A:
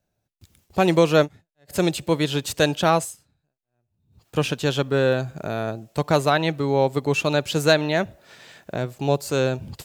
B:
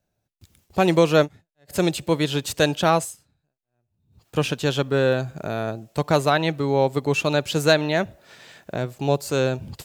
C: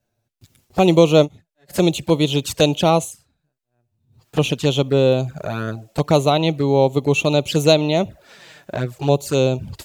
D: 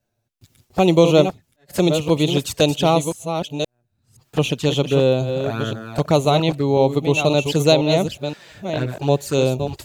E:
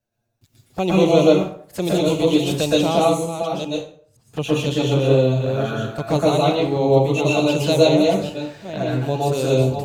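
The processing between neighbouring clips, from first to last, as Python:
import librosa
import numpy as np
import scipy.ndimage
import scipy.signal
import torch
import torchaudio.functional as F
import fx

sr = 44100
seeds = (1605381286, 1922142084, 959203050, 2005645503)

y1 = x
y2 = fx.env_flanger(y1, sr, rest_ms=8.6, full_db=-19.5)
y2 = F.gain(torch.from_numpy(y2), 5.5).numpy()
y3 = fx.reverse_delay(y2, sr, ms=521, wet_db=-7.5)
y3 = F.gain(torch.from_numpy(y3), -1.0).numpy()
y4 = fx.rev_plate(y3, sr, seeds[0], rt60_s=0.51, hf_ratio=0.7, predelay_ms=105, drr_db=-5.0)
y4 = F.gain(torch.from_numpy(y4), -6.5).numpy()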